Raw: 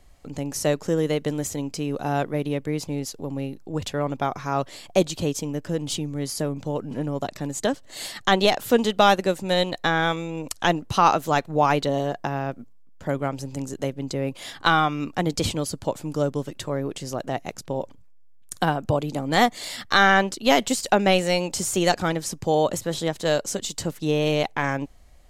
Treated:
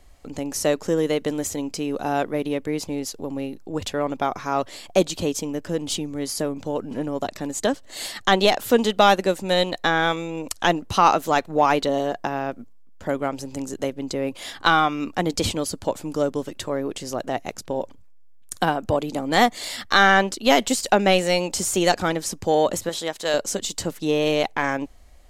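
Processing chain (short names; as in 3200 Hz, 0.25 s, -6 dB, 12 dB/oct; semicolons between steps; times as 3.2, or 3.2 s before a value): 22.89–23.34 low shelf 400 Hz -11 dB; in parallel at -10.5 dB: soft clip -14.5 dBFS, distortion -13 dB; on the sum: bell 140 Hz -10 dB 0.44 oct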